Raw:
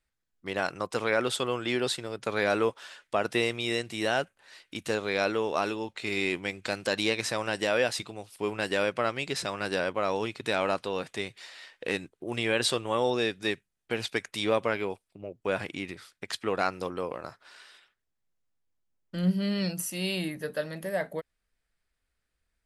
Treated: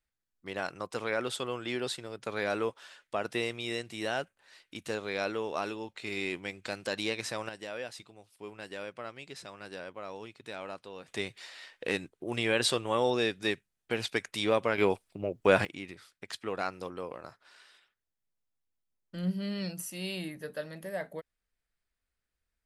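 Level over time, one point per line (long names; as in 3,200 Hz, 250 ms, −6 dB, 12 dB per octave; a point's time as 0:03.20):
−5.5 dB
from 0:07.49 −13.5 dB
from 0:11.08 −1 dB
from 0:14.78 +6.5 dB
from 0:15.65 −6 dB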